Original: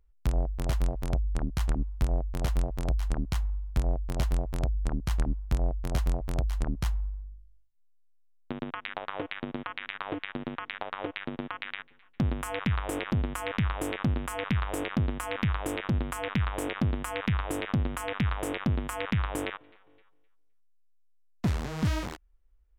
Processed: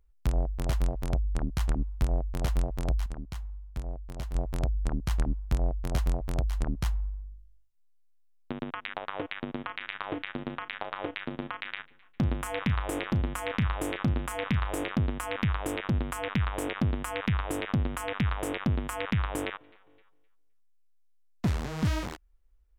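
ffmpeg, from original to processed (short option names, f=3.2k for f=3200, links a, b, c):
-filter_complex "[0:a]asettb=1/sr,asplit=3[a][b][c];[a]atrim=end=9.604[d];[b]atrim=start=9.6:end=14.93,asetpts=PTS-STARTPTS,afade=t=in:d=0.004:c=qsin,afade=t=out:st=5.326:d=0.004:c=qsin,asplit=2[e][f];[f]adelay=35,volume=-13.5dB[g];[e][g]amix=inputs=2:normalize=0,atrim=end_sample=235053[h];[c]atrim=start=14.926[i];[d][h]acrossfade=d=0.004:c1=hsin:c2=qsin[j];[j][i]acrossfade=d=0.004:c1=qsin:c2=hsin,asplit=3[k][l][m];[k]atrim=end=3.062[n];[l]atrim=start=3.058:end=4.352,asetpts=PTS-STARTPTS,volume=-8.5dB[o];[m]atrim=start=4.348[p];[n][o]acrossfade=d=0.004:c1=hsin:c2=hsin[q];[q][p]acrossfade=d=0.004:c1=hsin:c2=hsin"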